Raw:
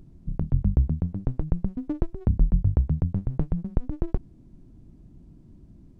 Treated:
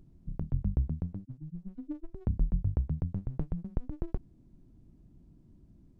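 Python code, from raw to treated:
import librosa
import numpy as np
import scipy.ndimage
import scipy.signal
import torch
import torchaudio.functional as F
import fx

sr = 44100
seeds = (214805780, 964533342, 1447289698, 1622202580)

y = fx.hpss_only(x, sr, part='harmonic', at=(1.21, 2.14))
y = y * librosa.db_to_amplitude(-8.0)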